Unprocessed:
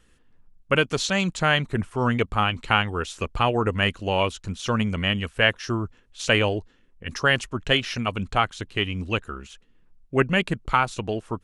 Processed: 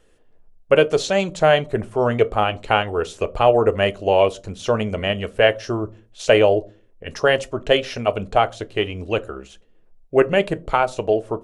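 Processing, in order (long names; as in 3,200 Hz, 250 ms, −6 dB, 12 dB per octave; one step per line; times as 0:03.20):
drawn EQ curve 260 Hz 0 dB, 590 Hz +14 dB, 1,100 Hz 0 dB
on a send: convolution reverb RT60 0.35 s, pre-delay 3 ms, DRR 12 dB
on the sum: level −1 dB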